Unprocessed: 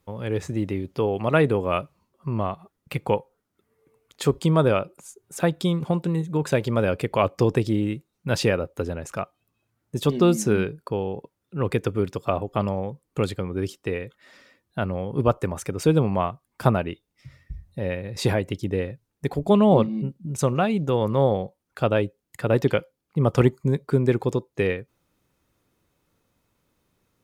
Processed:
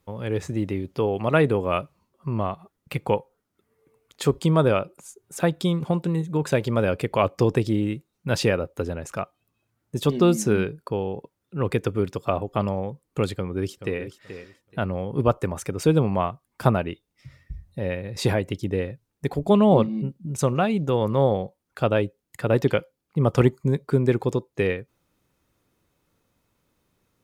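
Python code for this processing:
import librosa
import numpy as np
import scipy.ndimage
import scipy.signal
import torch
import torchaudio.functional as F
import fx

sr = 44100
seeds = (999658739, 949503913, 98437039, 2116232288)

y = fx.echo_throw(x, sr, start_s=13.34, length_s=0.67, ms=430, feedback_pct=20, wet_db=-11.5)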